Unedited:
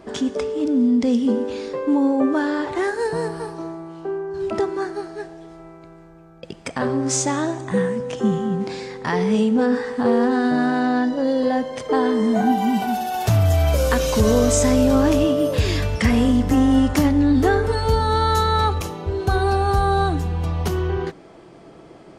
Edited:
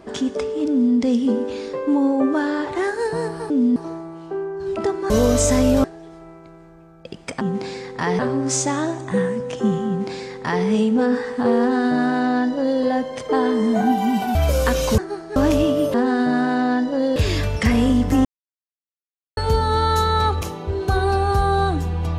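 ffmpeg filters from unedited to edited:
-filter_complex "[0:a]asplit=14[s0][s1][s2][s3][s4][s5][s6][s7][s8][s9][s10][s11][s12][s13];[s0]atrim=end=3.502[s14];[s1]atrim=start=0.688:end=0.952[s15];[s2]atrim=start=3.498:end=4.842[s16];[s3]atrim=start=14.228:end=14.972[s17];[s4]atrim=start=5.218:end=6.792[s18];[s5]atrim=start=8.468:end=9.252[s19];[s6]atrim=start=6.788:end=12.952[s20];[s7]atrim=start=13.598:end=14.232[s21];[s8]atrim=start=4.838:end=5.222[s22];[s9]atrim=start=14.968:end=15.552[s23];[s10]atrim=start=10.188:end=11.412[s24];[s11]atrim=start=15.548:end=16.64,asetpts=PTS-STARTPTS,afade=t=out:st=1.088:d=0.004:c=hsin[s25];[s12]atrim=start=16.64:end=17.76,asetpts=PTS-STARTPTS,volume=0[s26];[s13]atrim=start=17.76,asetpts=PTS-STARTPTS,afade=t=in:d=0.004:c=hsin[s27];[s14][s15]acrossfade=d=0.004:c1=hsin:c2=hsin[s28];[s28][s16]acrossfade=d=0.004:c1=hsin:c2=hsin[s29];[s29][s17]acrossfade=d=0.004:c1=hsin:c2=hsin[s30];[s30][s18]acrossfade=d=0.004:c1=hsin:c2=hsin[s31];[s31][s19]acrossfade=d=0.004:c1=hsin:c2=hsin[s32];[s32][s20]acrossfade=d=0.004:c1=hsin:c2=hsin[s33];[s33][s21]acrossfade=d=0.004:c1=hsin:c2=hsin[s34];[s34][s22]acrossfade=d=0.004:c1=hsin:c2=hsin[s35];[s35][s23]acrossfade=d=0.004:c1=hsin:c2=hsin[s36];[s36][s24]acrossfade=d=0.004:c1=hsin:c2=hsin[s37];[s25][s26][s27]concat=n=3:v=0:a=1[s38];[s37][s38]acrossfade=d=0.004:c1=hsin:c2=hsin"

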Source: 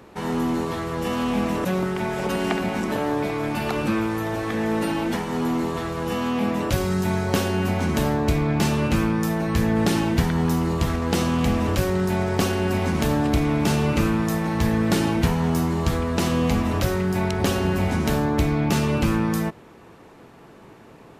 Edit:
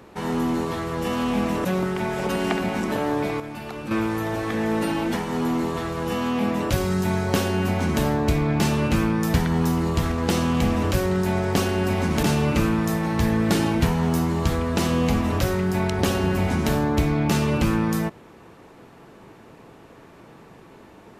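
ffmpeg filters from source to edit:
-filter_complex "[0:a]asplit=5[s0][s1][s2][s3][s4];[s0]atrim=end=3.402[s5];[s1]atrim=start=3.398:end=3.912,asetpts=PTS-STARTPTS,volume=0.355[s6];[s2]atrim=start=3.908:end=9.342[s7];[s3]atrim=start=10.178:end=13.072[s8];[s4]atrim=start=13.638[s9];[s5][s6]acrossfade=d=0.004:c1=hsin:c2=hsin[s10];[s10][s7]acrossfade=d=0.004:c1=hsin:c2=hsin[s11];[s11][s8]acrossfade=d=0.004:c1=hsin:c2=hsin[s12];[s12][s9]acrossfade=d=0.004:c1=hsin:c2=hsin"

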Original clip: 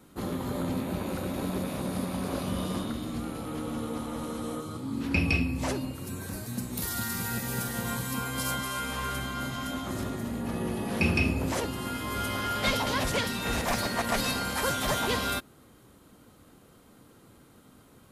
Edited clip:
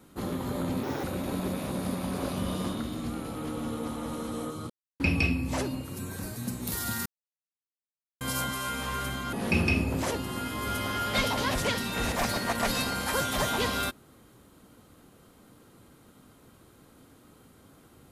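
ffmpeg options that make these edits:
-filter_complex "[0:a]asplit=8[s0][s1][s2][s3][s4][s5][s6][s7];[s0]atrim=end=0.834[s8];[s1]atrim=start=0.83:end=1.14,asetpts=PTS-STARTPTS,asetrate=65709,aresample=44100,atrim=end_sample=9175,asetpts=PTS-STARTPTS[s9];[s2]atrim=start=1.136:end=4.8,asetpts=PTS-STARTPTS,afade=t=out:st=3.66:d=0.004:c=hsin[s10];[s3]atrim=start=4.8:end=5.1,asetpts=PTS-STARTPTS,volume=0[s11];[s4]atrim=start=5.1:end=7.16,asetpts=PTS-STARTPTS,afade=t=in:d=0.004:c=hsin,afade=t=out:st=2.056:d=0.004:c=hsin[s12];[s5]atrim=start=7.16:end=8.31,asetpts=PTS-STARTPTS,volume=0[s13];[s6]atrim=start=8.31:end=9.432,asetpts=PTS-STARTPTS,afade=t=in:d=0.004:c=hsin[s14];[s7]atrim=start=10.818[s15];[s8][s9]acrossfade=d=0.004:c1=hsin:c2=hsin[s16];[s10][s11][s12][s13][s14]concat=n=5:v=0:a=1[s17];[s16][s17]acrossfade=d=0.004:c1=hsin:c2=hsin[s18];[s18][s15]acrossfade=d=0.004:c1=hsin:c2=hsin"

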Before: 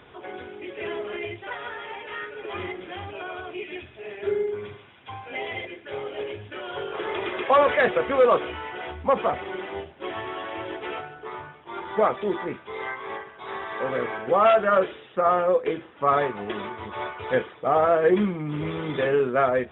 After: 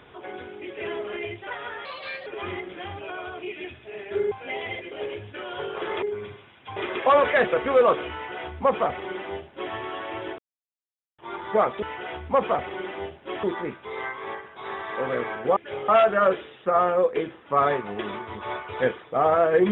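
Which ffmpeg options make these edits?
-filter_complex "[0:a]asplit=13[s0][s1][s2][s3][s4][s5][s6][s7][s8][s9][s10][s11][s12];[s0]atrim=end=1.854[s13];[s1]atrim=start=1.85:end=2.38,asetpts=PTS-STARTPTS,asetrate=56448,aresample=44100,atrim=end_sample=18260,asetpts=PTS-STARTPTS[s14];[s2]atrim=start=2.376:end=4.432[s15];[s3]atrim=start=5.168:end=5.772[s16];[s4]atrim=start=6.088:end=7.202[s17];[s5]atrim=start=4.428:end=5.172[s18];[s6]atrim=start=7.198:end=10.82,asetpts=PTS-STARTPTS,afade=t=out:st=3.618:d=0.004:c=hsin[s19];[s7]atrim=start=10.82:end=11.62,asetpts=PTS-STARTPTS,volume=0[s20];[s8]atrim=start=11.62:end=12.262,asetpts=PTS-STARTPTS,afade=t=in:d=0.004:c=hsin[s21];[s9]atrim=start=8.568:end=10.182[s22];[s10]atrim=start=12.258:end=14.392[s23];[s11]atrim=start=5.768:end=6.092[s24];[s12]atrim=start=14.388[s25];[s13][s14]acrossfade=d=0.004:c1=hsin:c2=hsin[s26];[s26][s15]acrossfade=d=0.004:c1=hsin:c2=hsin[s27];[s27][s16]acrossfade=d=0.004:c1=hsin:c2=hsin[s28];[s28][s17]acrossfade=d=0.004:c1=hsin:c2=hsin[s29];[s29][s18]acrossfade=d=0.004:c1=hsin:c2=hsin[s30];[s19][s20][s21]concat=n=3:v=0:a=1[s31];[s30][s31]acrossfade=d=0.004:c1=hsin:c2=hsin[s32];[s32][s22]acrossfade=d=0.004:c1=hsin:c2=hsin[s33];[s33][s23]acrossfade=d=0.004:c1=hsin:c2=hsin[s34];[s34][s24]acrossfade=d=0.004:c1=hsin:c2=hsin[s35];[s35][s25]acrossfade=d=0.004:c1=hsin:c2=hsin"

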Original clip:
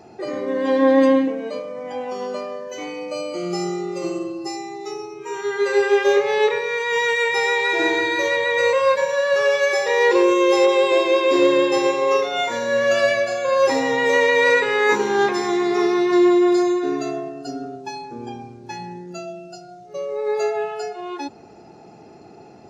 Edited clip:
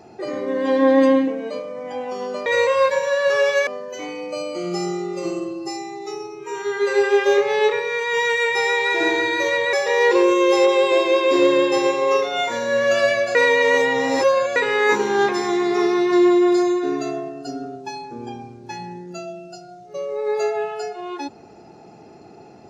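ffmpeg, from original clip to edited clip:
-filter_complex "[0:a]asplit=6[s0][s1][s2][s3][s4][s5];[s0]atrim=end=2.462[s6];[s1]atrim=start=8.518:end=9.732[s7];[s2]atrim=start=2.458:end=8.522[s8];[s3]atrim=start=9.728:end=13.352[s9];[s4]atrim=start=13.348:end=14.562,asetpts=PTS-STARTPTS,areverse[s10];[s5]atrim=start=14.558[s11];[s6][s7]acrossfade=d=0.004:c1=hsin:c2=hsin[s12];[s12][s8]acrossfade=d=0.004:c1=hsin:c2=hsin[s13];[s13][s9]acrossfade=d=0.004:c1=hsin:c2=hsin[s14];[s14][s10]acrossfade=d=0.004:c1=hsin:c2=hsin[s15];[s15][s11]acrossfade=d=0.004:c1=hsin:c2=hsin"

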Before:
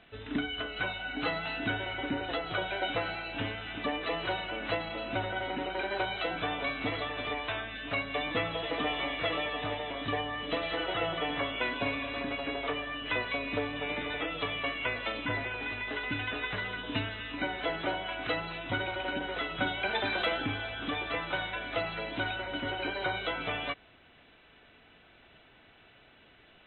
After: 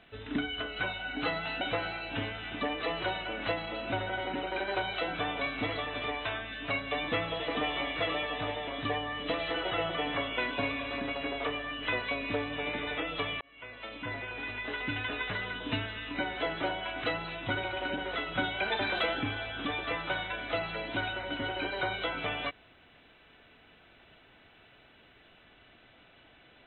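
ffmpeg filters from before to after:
-filter_complex "[0:a]asplit=3[s0][s1][s2];[s0]atrim=end=1.612[s3];[s1]atrim=start=2.838:end=14.64,asetpts=PTS-STARTPTS,afade=t=out:st=11.798:d=0.004:c=hsin[s4];[s2]atrim=start=14.64,asetpts=PTS-STARTPTS,afade=t=in:d=1.78:c=qsin[s5];[s4][s5]concat=n=2:v=0:a=1[s6];[s3][s6]acrossfade=d=0.004:c1=hsin:c2=hsin"

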